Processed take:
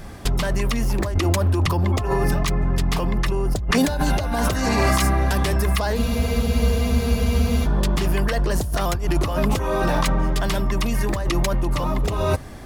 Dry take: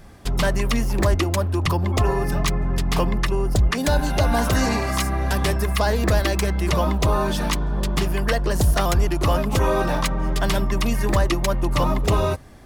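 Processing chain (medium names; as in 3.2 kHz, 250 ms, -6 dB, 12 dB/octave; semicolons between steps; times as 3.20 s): compressor with a negative ratio -24 dBFS, ratio -1; spectral freeze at 6.00 s, 1.66 s; trim +4 dB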